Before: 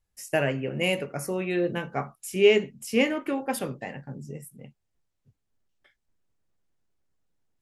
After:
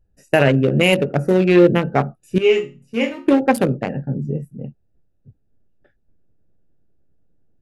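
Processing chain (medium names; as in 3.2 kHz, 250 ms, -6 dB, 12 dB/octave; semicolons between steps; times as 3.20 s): local Wiener filter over 41 samples; 2.38–3.28 s: chord resonator A#2 minor, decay 0.29 s; loudness maximiser +17 dB; trim -1 dB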